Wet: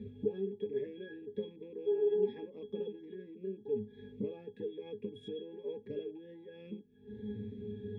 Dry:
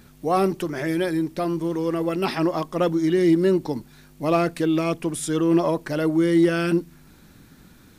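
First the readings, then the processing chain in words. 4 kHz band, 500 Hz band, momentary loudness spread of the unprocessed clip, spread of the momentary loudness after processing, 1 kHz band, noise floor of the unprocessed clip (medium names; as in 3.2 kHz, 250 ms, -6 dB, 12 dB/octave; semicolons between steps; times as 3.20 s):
-21.0 dB, -12.5 dB, 7 LU, 15 LU, -33.5 dB, -51 dBFS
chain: rattle on loud lows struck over -30 dBFS, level -30 dBFS; FFT filter 160 Hz 0 dB, 430 Hz +15 dB, 650 Hz -6 dB, 1.2 kHz -15 dB, 2.7 kHz +8 dB, 4.5 kHz -9 dB; compression 12:1, threshold -31 dBFS, peak gain reduction 28 dB; spectral replace 1.89–2.20 s, 400–1500 Hz after; high-pass 60 Hz; peaking EQ 290 Hz -4 dB 0.53 oct; pitch-class resonator G#, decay 0.21 s; Shepard-style phaser rising 1.2 Hz; trim +15.5 dB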